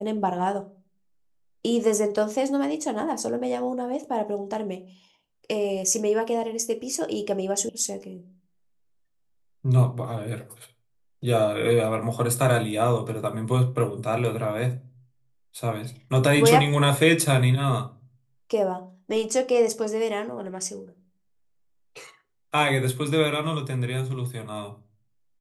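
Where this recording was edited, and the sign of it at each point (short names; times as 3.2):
7.69 sound cut off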